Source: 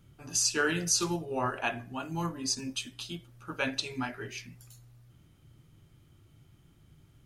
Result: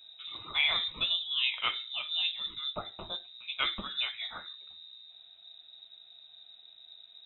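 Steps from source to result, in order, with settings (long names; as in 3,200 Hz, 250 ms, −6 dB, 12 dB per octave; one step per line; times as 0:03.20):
low-shelf EQ 73 Hz +10.5 dB
voice inversion scrambler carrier 3,800 Hz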